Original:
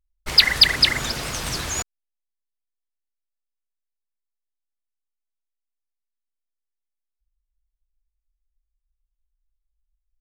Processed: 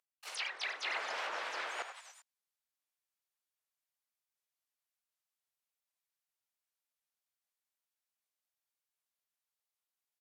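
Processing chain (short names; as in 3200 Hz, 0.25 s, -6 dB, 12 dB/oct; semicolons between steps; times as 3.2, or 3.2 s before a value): HPF 490 Hz 24 dB/oct; bell 14000 Hz +4.5 dB 0.34 oct; frequency-shifting echo 99 ms, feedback 48%, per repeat +56 Hz, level -17 dB; dynamic EQ 2100 Hz, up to -3 dB, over -30 dBFS, Q 1.9; reverse; compressor 4:1, threshold -36 dBFS, peak gain reduction 22.5 dB; reverse; harmoniser +3 st -2 dB, +5 st -2 dB, +12 st -3 dB; treble ducked by the level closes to 2200 Hz, closed at -32.5 dBFS; record warp 78 rpm, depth 250 cents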